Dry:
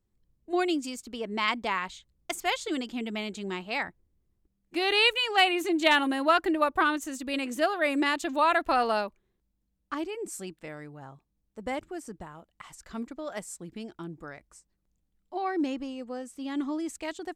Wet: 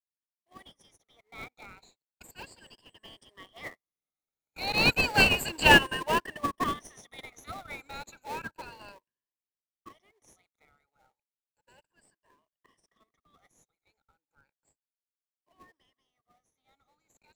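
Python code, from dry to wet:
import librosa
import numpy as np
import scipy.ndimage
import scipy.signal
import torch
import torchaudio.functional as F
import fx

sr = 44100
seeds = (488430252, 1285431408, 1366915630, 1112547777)

p1 = fx.spec_ripple(x, sr, per_octave=1.3, drift_hz=0.34, depth_db=24)
p2 = fx.doppler_pass(p1, sr, speed_mps=13, closest_m=3.8, pass_at_s=5.51)
p3 = scipy.signal.sosfilt(scipy.signal.cheby1(3, 1.0, 900.0, 'highpass', fs=sr, output='sos'), p2)
p4 = fx.sample_hold(p3, sr, seeds[0], rate_hz=1400.0, jitter_pct=20)
y = p3 + F.gain(torch.from_numpy(p4), -4.0).numpy()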